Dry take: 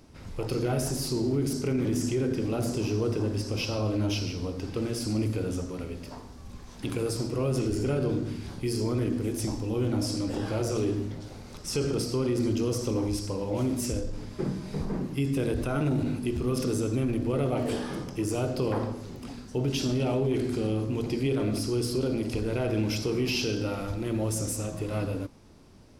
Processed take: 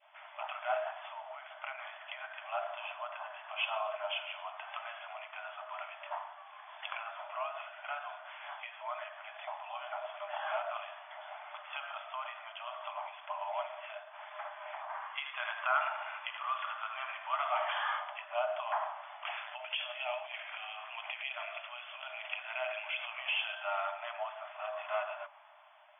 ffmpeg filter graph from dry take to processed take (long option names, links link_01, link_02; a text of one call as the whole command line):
ffmpeg -i in.wav -filter_complex "[0:a]asettb=1/sr,asplit=3[link_01][link_02][link_03];[link_01]atrim=end=14.944[link_04];[link_02]atrim=start=14.94:end=18,asetpts=PTS-STARTPTS,afade=type=in:duration=0.004:curve=qsin,afade=type=out:start_time=3.056:duration=0.004:curve=qsin,lowshelf=frequency=780:width_type=q:width=1.5:gain=-8,bandreject=frequency=2600:width=29,aecho=1:1:78:0.355,atrim=end_sample=134946[link_05];[link_03]atrim=start=17.996[link_06];[link_04][link_05]acrossfade=duration=0.004:curve1=hsin:curve2=qsin[link_07];[link_07][link_06]acrossfade=duration=0.004:curve1=qsin:curve2=hsin,asettb=1/sr,asplit=3[link_08][link_09][link_10];[link_08]atrim=end=19.254[link_11];[link_09]atrim=start=19.25:end=23.19,asetpts=PTS-STARTPTS,afade=type=in:duration=0.004:curve=qsin,afade=type=out:start_time=3.936:duration=0.004:curve=qsin,equalizer=frequency=2600:width_type=o:width=1.1:gain=11,acrusher=bits=8:dc=4:mix=0:aa=0.000001,acompressor=threshold=-33dB:ratio=12:attack=3.2:release=140:knee=1:detection=peak[link_12];[link_10]atrim=start=23.186[link_13];[link_11][link_12]acrossfade=duration=0.004:curve1=hsin:curve2=qsin[link_14];[link_14][link_13]acrossfade=duration=0.004:curve1=qsin:curve2=hsin,acompressor=threshold=-33dB:ratio=2,adynamicequalizer=threshold=0.00251:dfrequency=1100:dqfactor=0.75:tfrequency=1100:tqfactor=0.75:attack=5:release=100:ratio=0.375:range=3:mode=boostabove:tftype=bell,afftfilt=real='re*between(b*sr/4096,590,3500)':imag='im*between(b*sr/4096,590,3500)':win_size=4096:overlap=0.75,volume=3dB" out.wav